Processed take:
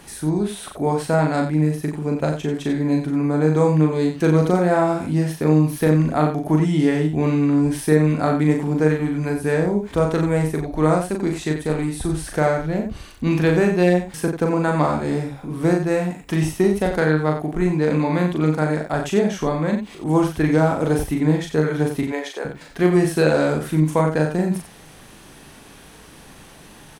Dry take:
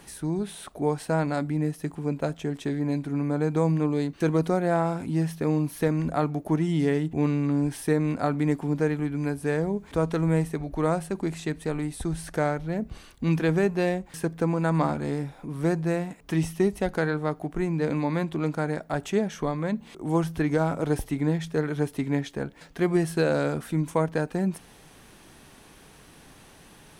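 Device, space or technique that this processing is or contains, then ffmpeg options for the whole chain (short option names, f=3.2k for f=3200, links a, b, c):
slapback doubling: -filter_complex "[0:a]asettb=1/sr,asplit=3[a][b][c];[a]atrim=end=22.034[d];[b]atrim=start=22.03:end=22.45,asetpts=PTS-STARTPTS,afade=t=in:d=0.004:c=qsin,afade=t=out:st=0.416:d=0.004:c=qsin,highpass=f=390:w=0.5412,highpass=f=390:w=1.3066[e];[c]atrim=start=22.446[f];[d][e]acrossfade=d=0.004:c1=hsin:c2=qsin[g];[g][f]acrossfade=d=0.004:c1=qsin:c2=hsin,asplit=3[h][i][j];[i]adelay=39,volume=-3.5dB[k];[j]adelay=90,volume=-8dB[l];[h][k][l]amix=inputs=3:normalize=0,volume=5dB"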